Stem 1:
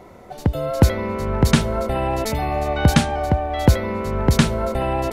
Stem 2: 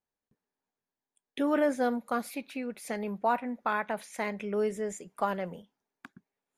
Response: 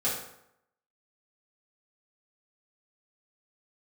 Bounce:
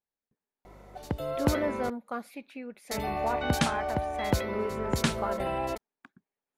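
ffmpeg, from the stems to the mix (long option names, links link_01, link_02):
-filter_complex "[0:a]lowshelf=frequency=180:gain=-10,aeval=exprs='val(0)+0.00562*(sin(2*PI*50*n/s)+sin(2*PI*2*50*n/s)/2+sin(2*PI*3*50*n/s)/3+sin(2*PI*4*50*n/s)/4+sin(2*PI*5*50*n/s)/5)':channel_layout=same,adelay=650,volume=-7.5dB,asplit=3[link_01][link_02][link_03];[link_01]atrim=end=1.9,asetpts=PTS-STARTPTS,afade=type=out:start_time=1.896:duration=0.004:curve=hsin[link_04];[link_02]atrim=start=1.9:end=2.91,asetpts=PTS-STARTPTS,volume=0[link_05];[link_03]atrim=start=2.91,asetpts=PTS-STARTPTS,afade=type=in:duration=0.004:curve=hsin[link_06];[link_04][link_05][link_06]concat=n=3:v=0:a=1[link_07];[1:a]bass=frequency=250:gain=-1,treble=frequency=4000:gain=-7,volume=-4.5dB[link_08];[link_07][link_08]amix=inputs=2:normalize=0"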